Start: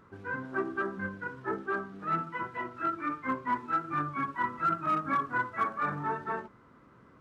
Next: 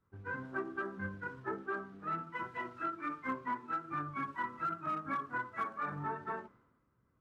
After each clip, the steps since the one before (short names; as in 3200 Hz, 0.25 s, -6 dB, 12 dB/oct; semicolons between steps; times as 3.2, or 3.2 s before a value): compressor 5:1, threshold -35 dBFS, peak gain reduction 10 dB; three-band expander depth 100%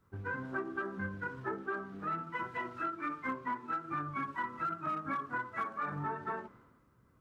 compressor 2:1, threshold -47 dBFS, peak gain reduction 9 dB; gain +8 dB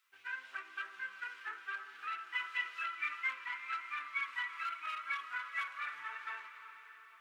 resonant high-pass 2600 Hz, resonance Q 2.5; flange 1.8 Hz, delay 1.5 ms, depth 1.6 ms, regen -63%; on a send at -8.5 dB: reverb RT60 5.2 s, pre-delay 0.254 s; on the sum: gain +9 dB